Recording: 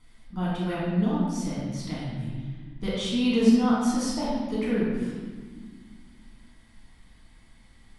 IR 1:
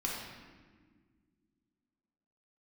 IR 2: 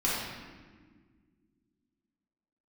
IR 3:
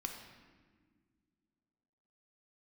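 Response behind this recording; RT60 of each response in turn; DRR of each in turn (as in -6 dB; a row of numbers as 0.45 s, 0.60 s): 2; 1.7 s, 1.7 s, 1.7 s; -4.0 dB, -8.0 dB, 2.5 dB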